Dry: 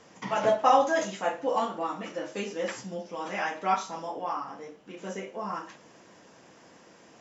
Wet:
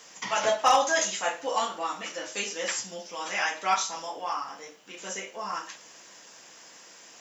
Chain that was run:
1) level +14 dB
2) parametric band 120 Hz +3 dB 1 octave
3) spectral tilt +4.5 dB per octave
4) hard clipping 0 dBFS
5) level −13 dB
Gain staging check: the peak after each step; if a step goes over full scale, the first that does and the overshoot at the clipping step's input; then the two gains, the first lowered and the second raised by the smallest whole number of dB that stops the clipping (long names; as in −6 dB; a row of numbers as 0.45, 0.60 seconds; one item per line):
+5.5, +5.5, +6.0, 0.0, −13.0 dBFS
step 1, 6.0 dB
step 1 +8 dB, step 5 −7 dB